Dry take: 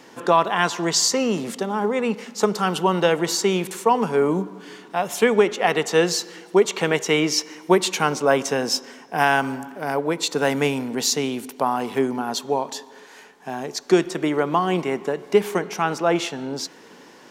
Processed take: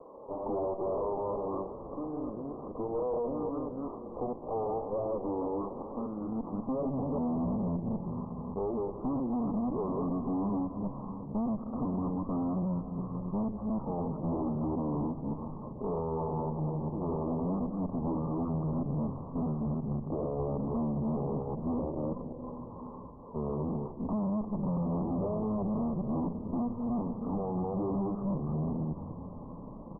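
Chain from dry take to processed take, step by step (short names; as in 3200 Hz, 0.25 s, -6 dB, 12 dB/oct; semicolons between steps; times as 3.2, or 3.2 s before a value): reverse delay 0.112 s, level -2.5 dB; HPF 42 Hz; in parallel at -2.5 dB: limiter -11 dBFS, peak gain reduction 8.5 dB; on the sum: compressor 6:1, threshold -18 dBFS, peak gain reduction 12 dB; high-pass sweep 760 Hz -> 310 Hz, 3.41–4.03; tube stage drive 25 dB, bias 0.7; steep low-pass 2000 Hz 96 dB/oct; frequency-shifting echo 0.266 s, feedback 57%, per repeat -110 Hz, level -14.5 dB; speed mistake 78 rpm record played at 45 rpm; gain -4.5 dB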